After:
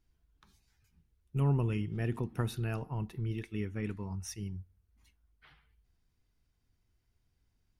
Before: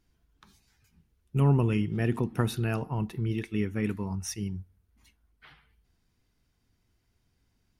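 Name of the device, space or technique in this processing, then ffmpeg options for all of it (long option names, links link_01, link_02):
low shelf boost with a cut just above: -filter_complex "[0:a]asettb=1/sr,asplit=3[link_01][link_02][link_03];[link_01]atrim=end=3.714[link_04];[link_02]atrim=start=3.71:end=4.16,asetpts=PTS-STARTPTS,afade=type=in:duration=0.004:curve=qsin,afade=type=out:start_time=0.446:duration=0.004:curve=qsin,lowpass=8700[link_05];[link_03]atrim=start=4.156[link_06];[link_04][link_05]acrossfade=duration=0.004:curve1=hsin:curve2=qsin[link_07];[link_07][link_06]acrossfade=duration=0.004:curve1=qsin:curve2=hsin,lowshelf=frequency=84:gain=7.5,equalizer=frequency=220:width_type=o:width=0.77:gain=-2.5,volume=-7dB"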